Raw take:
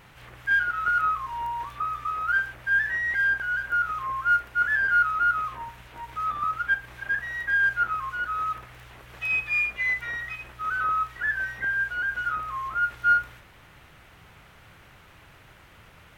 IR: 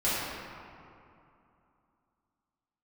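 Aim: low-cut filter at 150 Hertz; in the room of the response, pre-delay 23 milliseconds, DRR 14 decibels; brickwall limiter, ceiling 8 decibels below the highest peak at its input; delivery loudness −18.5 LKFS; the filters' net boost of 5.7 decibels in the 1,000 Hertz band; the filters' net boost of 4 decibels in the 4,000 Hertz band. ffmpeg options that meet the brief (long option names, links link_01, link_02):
-filter_complex "[0:a]highpass=150,equalizer=frequency=1000:width_type=o:gain=8.5,equalizer=frequency=4000:width_type=o:gain=5,alimiter=limit=-15.5dB:level=0:latency=1,asplit=2[link_01][link_02];[1:a]atrim=start_sample=2205,adelay=23[link_03];[link_02][link_03]afir=irnorm=-1:irlink=0,volume=-26dB[link_04];[link_01][link_04]amix=inputs=2:normalize=0,volume=4dB"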